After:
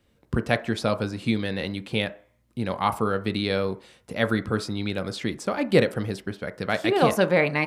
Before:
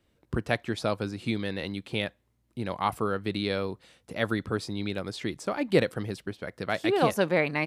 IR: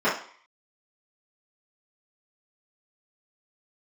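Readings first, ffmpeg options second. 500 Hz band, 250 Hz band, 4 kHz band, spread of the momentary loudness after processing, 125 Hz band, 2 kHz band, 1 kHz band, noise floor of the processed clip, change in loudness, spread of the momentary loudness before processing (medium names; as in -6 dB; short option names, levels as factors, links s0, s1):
+4.0 dB, +4.5 dB, +4.0 dB, 11 LU, +4.5 dB, +4.0 dB, +4.0 dB, -65 dBFS, +4.0 dB, 12 LU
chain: -filter_complex "[0:a]asplit=2[s0][s1];[1:a]atrim=start_sample=2205,highshelf=f=3200:g=-12[s2];[s1][s2]afir=irnorm=-1:irlink=0,volume=0.0501[s3];[s0][s3]amix=inputs=2:normalize=0,volume=1.58"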